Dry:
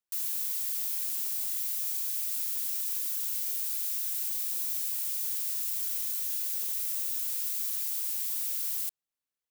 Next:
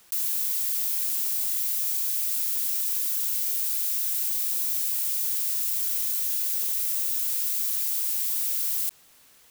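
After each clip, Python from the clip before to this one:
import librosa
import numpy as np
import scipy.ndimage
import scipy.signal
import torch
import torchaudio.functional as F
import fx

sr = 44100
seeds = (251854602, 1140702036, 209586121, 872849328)

y = fx.env_flatten(x, sr, amount_pct=50)
y = y * librosa.db_to_amplitude(5.0)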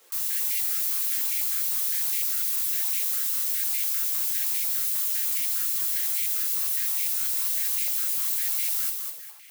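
y = fx.echo_feedback(x, sr, ms=204, feedback_pct=34, wet_db=-5)
y = fx.room_shoebox(y, sr, seeds[0], volume_m3=220.0, walls='furnished', distance_m=2.2)
y = fx.filter_held_highpass(y, sr, hz=9.9, low_hz=430.0, high_hz=2200.0)
y = y * librosa.db_to_amplitude(-4.0)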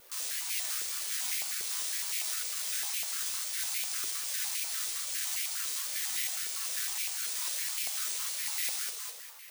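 y = fx.wow_flutter(x, sr, seeds[1], rate_hz=2.1, depth_cents=140.0)
y = (np.kron(scipy.signal.resample_poly(y, 1, 3), np.eye(3)[0]) * 3)[:len(y)]
y = fx.echo_feedback(y, sr, ms=193, feedback_pct=40, wet_db=-14.0)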